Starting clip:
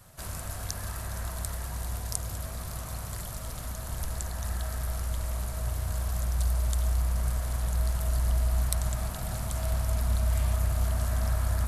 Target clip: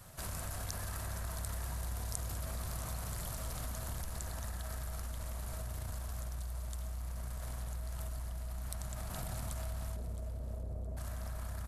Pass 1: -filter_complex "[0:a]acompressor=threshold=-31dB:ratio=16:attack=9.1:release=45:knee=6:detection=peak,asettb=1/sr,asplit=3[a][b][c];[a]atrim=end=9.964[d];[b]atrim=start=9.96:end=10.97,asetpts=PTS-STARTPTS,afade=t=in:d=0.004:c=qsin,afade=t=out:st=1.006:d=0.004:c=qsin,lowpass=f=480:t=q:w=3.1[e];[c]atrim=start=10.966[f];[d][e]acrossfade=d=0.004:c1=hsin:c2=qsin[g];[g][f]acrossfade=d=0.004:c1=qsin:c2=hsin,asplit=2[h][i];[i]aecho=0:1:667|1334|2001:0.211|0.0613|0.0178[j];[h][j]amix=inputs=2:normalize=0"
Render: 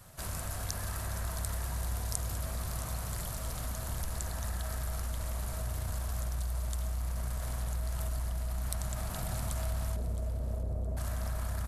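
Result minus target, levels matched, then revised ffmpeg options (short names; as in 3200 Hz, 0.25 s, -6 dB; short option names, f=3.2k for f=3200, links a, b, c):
compressor: peak gain reduction -6.5 dB
-filter_complex "[0:a]acompressor=threshold=-38dB:ratio=16:attack=9.1:release=45:knee=6:detection=peak,asettb=1/sr,asplit=3[a][b][c];[a]atrim=end=9.964[d];[b]atrim=start=9.96:end=10.97,asetpts=PTS-STARTPTS,afade=t=in:d=0.004:c=qsin,afade=t=out:st=1.006:d=0.004:c=qsin,lowpass=f=480:t=q:w=3.1[e];[c]atrim=start=10.966[f];[d][e]acrossfade=d=0.004:c1=hsin:c2=qsin[g];[g][f]acrossfade=d=0.004:c1=qsin:c2=hsin,asplit=2[h][i];[i]aecho=0:1:667|1334|2001:0.211|0.0613|0.0178[j];[h][j]amix=inputs=2:normalize=0"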